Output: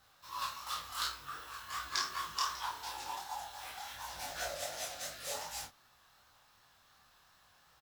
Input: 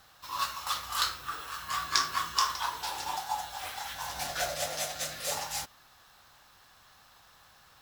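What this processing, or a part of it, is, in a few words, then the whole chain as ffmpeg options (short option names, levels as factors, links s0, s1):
double-tracked vocal: -filter_complex "[0:a]asplit=2[s0][s1];[s1]adelay=30,volume=0.631[s2];[s0][s2]amix=inputs=2:normalize=0,flanger=delay=16:depth=7.1:speed=2.7,volume=0.531"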